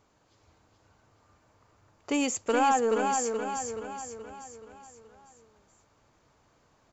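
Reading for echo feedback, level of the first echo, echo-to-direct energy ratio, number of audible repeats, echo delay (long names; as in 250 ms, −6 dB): 51%, −5.0 dB, −3.5 dB, 6, 426 ms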